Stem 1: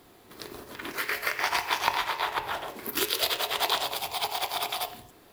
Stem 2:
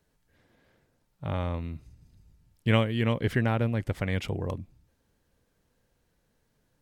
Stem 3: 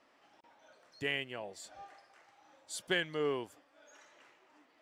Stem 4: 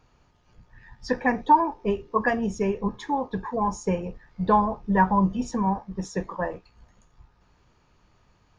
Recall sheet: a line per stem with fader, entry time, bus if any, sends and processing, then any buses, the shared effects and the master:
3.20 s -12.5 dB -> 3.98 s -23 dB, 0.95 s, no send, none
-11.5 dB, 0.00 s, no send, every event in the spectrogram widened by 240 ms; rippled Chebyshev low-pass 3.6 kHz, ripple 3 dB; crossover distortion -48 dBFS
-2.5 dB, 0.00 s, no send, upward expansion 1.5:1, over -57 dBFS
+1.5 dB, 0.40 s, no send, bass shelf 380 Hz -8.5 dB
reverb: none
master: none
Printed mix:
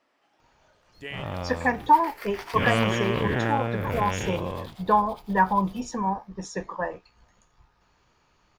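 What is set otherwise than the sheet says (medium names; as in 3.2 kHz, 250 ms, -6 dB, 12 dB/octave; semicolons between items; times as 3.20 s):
stem 2 -11.5 dB -> -2.5 dB; stem 3: missing upward expansion 1.5:1, over -57 dBFS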